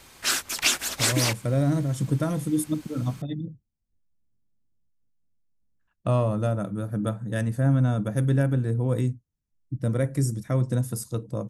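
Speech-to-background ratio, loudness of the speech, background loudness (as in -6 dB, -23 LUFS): -2.5 dB, -26.5 LUFS, -24.0 LUFS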